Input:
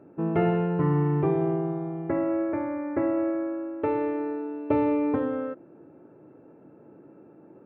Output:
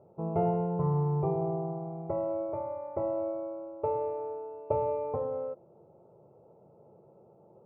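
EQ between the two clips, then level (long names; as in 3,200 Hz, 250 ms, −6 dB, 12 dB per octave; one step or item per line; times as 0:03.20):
low-pass filter 1,200 Hz 12 dB per octave
phaser with its sweep stopped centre 690 Hz, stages 4
0.0 dB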